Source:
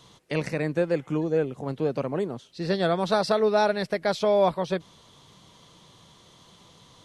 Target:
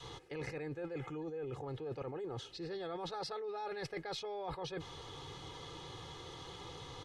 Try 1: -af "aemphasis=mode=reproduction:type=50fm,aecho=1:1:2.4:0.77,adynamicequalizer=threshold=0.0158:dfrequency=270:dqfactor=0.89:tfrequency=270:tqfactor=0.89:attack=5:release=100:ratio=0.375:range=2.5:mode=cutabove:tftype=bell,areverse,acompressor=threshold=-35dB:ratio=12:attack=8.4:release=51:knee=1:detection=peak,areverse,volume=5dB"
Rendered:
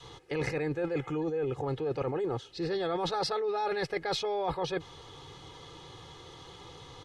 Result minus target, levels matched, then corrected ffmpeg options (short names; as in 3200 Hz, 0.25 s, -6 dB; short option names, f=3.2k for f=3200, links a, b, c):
compressor: peak gain reduction -10.5 dB
-af "aemphasis=mode=reproduction:type=50fm,aecho=1:1:2.4:0.77,adynamicequalizer=threshold=0.0158:dfrequency=270:dqfactor=0.89:tfrequency=270:tqfactor=0.89:attack=5:release=100:ratio=0.375:range=2.5:mode=cutabove:tftype=bell,areverse,acompressor=threshold=-46.5dB:ratio=12:attack=8.4:release=51:knee=1:detection=peak,areverse,volume=5dB"